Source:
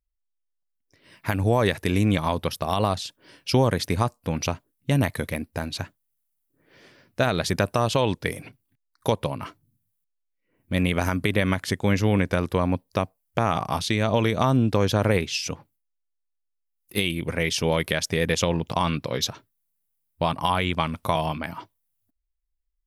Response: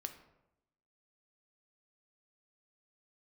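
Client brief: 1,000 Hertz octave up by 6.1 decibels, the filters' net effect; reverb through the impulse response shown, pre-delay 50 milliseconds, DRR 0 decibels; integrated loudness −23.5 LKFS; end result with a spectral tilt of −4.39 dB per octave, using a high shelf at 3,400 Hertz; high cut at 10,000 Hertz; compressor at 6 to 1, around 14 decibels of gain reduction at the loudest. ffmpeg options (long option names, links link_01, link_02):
-filter_complex "[0:a]lowpass=10000,equalizer=frequency=1000:width_type=o:gain=7,highshelf=frequency=3400:gain=5,acompressor=threshold=-29dB:ratio=6,asplit=2[link_01][link_02];[1:a]atrim=start_sample=2205,adelay=50[link_03];[link_02][link_03]afir=irnorm=-1:irlink=0,volume=2.5dB[link_04];[link_01][link_04]amix=inputs=2:normalize=0,volume=7.5dB"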